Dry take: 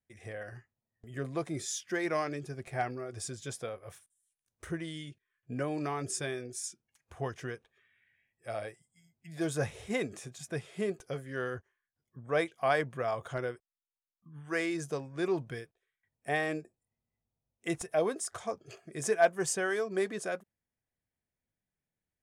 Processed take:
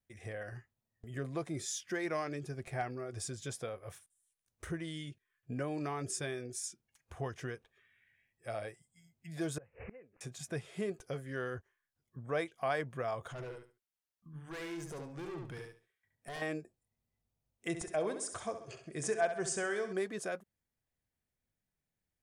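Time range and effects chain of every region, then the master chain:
9.58–10.21 s: peaking EQ 510 Hz +10.5 dB 0.29 oct + inverted gate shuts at -32 dBFS, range -29 dB + careless resampling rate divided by 8×, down none, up filtered
13.31–16.42 s: valve stage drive 36 dB, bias 0.3 + compression 2:1, threshold -45 dBFS + feedback delay 71 ms, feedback 23%, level -4.5 dB
17.68–19.93 s: brick-wall FIR low-pass 10 kHz + feedback delay 66 ms, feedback 44%, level -10 dB
whole clip: bass shelf 80 Hz +5.5 dB; compression 1.5:1, threshold -40 dBFS

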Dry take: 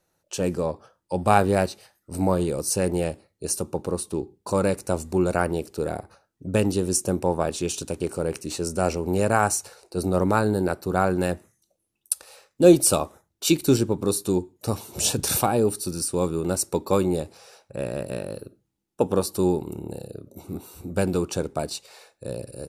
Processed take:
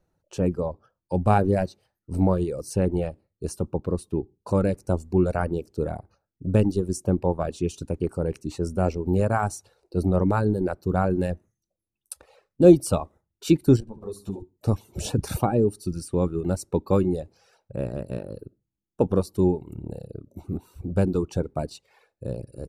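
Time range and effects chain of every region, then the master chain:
13.80–14.42 s: compression 3:1, threshold -28 dBFS + flutter echo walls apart 11.9 m, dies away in 0.5 s + three-phase chorus
whole clip: tilt EQ -3 dB/octave; reverb removal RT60 1 s; trim -3.5 dB

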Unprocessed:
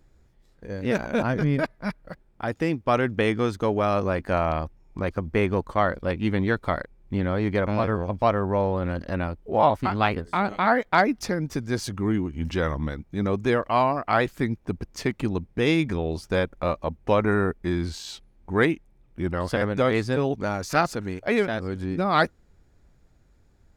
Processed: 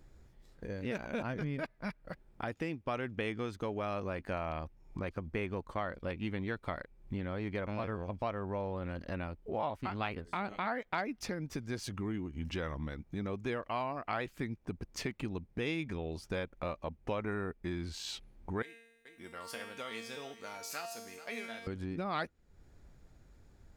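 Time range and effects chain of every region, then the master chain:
18.62–21.67 s: RIAA curve recording + feedback comb 230 Hz, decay 0.67 s, mix 90% + delay 432 ms -19 dB
whole clip: compression 2.5:1, threshold -41 dBFS; dynamic bell 2.6 kHz, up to +5 dB, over -60 dBFS, Q 1.8

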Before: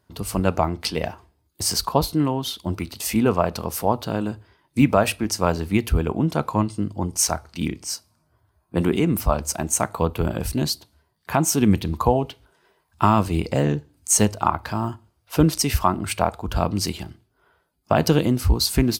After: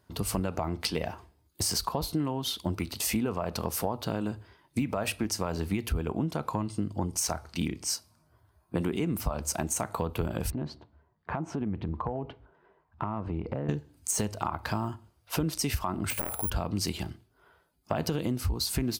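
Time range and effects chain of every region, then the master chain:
10.50–13.69 s: low-pass 1.4 kHz + compression 4:1, threshold -29 dBFS
16.10–16.50 s: peaking EQ 1.9 kHz +4.5 dB 1.6 oct + careless resampling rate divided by 4×, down none, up zero stuff
whole clip: de-esser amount 35%; peak limiter -10 dBFS; compression, threshold -26 dBFS

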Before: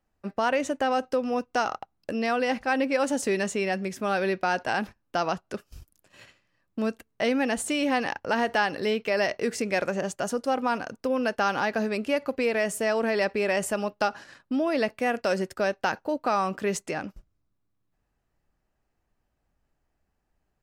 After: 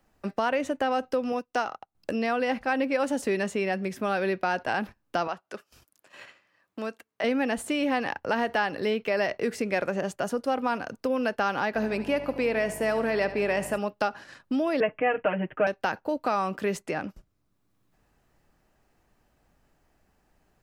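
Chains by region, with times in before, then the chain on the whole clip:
1.32–1.95 s: bass shelf 130 Hz -9 dB + upward expansion, over -46 dBFS
5.27–7.24 s: high-pass 860 Hz 6 dB/octave + treble shelf 2.8 kHz -8 dB
11.74–13.77 s: mains buzz 50 Hz, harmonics 20, -44 dBFS -3 dB/octave + feedback delay 73 ms, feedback 53%, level -14 dB
14.80–15.67 s: steep low-pass 3.1 kHz 96 dB/octave + comb 6.5 ms, depth 99%
whole clip: dynamic bell 6.9 kHz, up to -7 dB, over -51 dBFS, Q 1; three bands compressed up and down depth 40%; trim -1 dB

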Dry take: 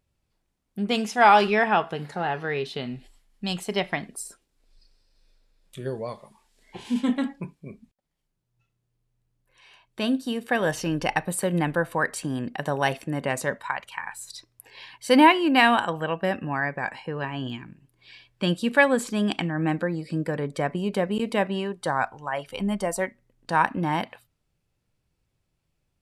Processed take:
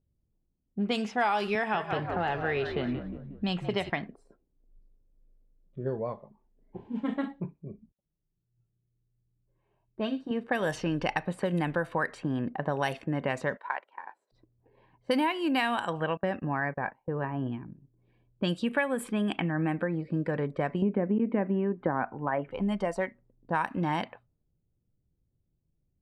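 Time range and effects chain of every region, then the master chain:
1.55–3.90 s: frequency-shifting echo 180 ms, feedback 49%, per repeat -54 Hz, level -10 dB + three bands compressed up and down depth 40%
6.87–10.31 s: comb of notches 250 Hz + feedback echo behind a high-pass 62 ms, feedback 39%, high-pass 4 kHz, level -4 dB
13.57–14.32 s: companding laws mixed up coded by A + high-pass 330 Hz 24 dB/octave + band-stop 1.2 kHz, Q 9.1
16.17–17.52 s: gate -37 dBFS, range -20 dB + treble shelf 3.1 kHz -11 dB
18.64–20.00 s: high-order bell 5.3 kHz -14.5 dB 1.1 oct + band-stop 2.9 kHz, Q 18
20.82–22.51 s: steep low-pass 2.3 kHz + peaking EQ 260 Hz +13.5 dB 1.8 oct
whole clip: level-controlled noise filter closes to 350 Hz, open at -18.5 dBFS; treble shelf 9.9 kHz +5 dB; compression 5:1, threshold -25 dBFS

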